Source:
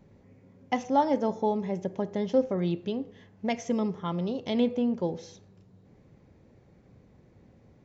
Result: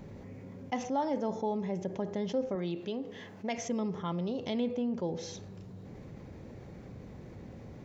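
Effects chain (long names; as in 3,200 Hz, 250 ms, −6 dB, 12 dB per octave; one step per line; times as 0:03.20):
0:02.55–0:03.58: high-pass filter 300 Hz 6 dB per octave
envelope flattener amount 50%
level −9 dB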